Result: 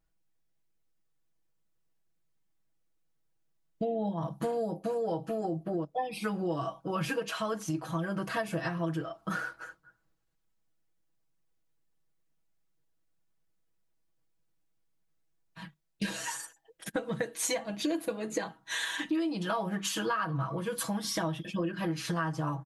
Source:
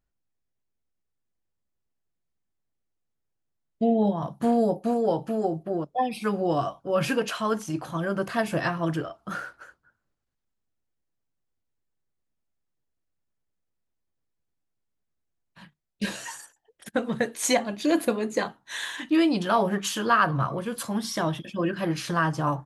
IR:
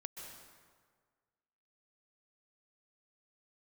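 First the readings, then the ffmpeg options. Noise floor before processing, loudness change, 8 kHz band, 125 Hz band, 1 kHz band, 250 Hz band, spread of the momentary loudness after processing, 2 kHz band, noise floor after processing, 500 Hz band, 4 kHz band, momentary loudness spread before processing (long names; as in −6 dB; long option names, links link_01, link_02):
−80 dBFS, −7.0 dB, −3.0 dB, −4.5 dB, −8.5 dB, −7.5 dB, 6 LU, −6.0 dB, −74 dBFS, −7.0 dB, −4.0 dB, 10 LU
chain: -af "aecho=1:1:6.2:0.93,acompressor=threshold=-30dB:ratio=5"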